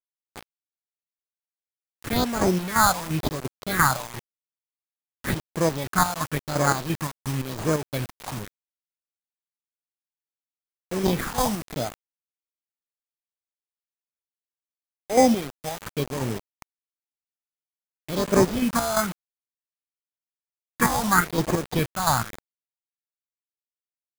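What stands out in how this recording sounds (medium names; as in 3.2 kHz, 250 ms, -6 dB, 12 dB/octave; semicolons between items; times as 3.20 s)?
chopped level 2.9 Hz, depth 60%, duty 50%; aliases and images of a low sample rate 2.8 kHz, jitter 0%; phasing stages 4, 0.94 Hz, lowest notch 350–3300 Hz; a quantiser's noise floor 6-bit, dither none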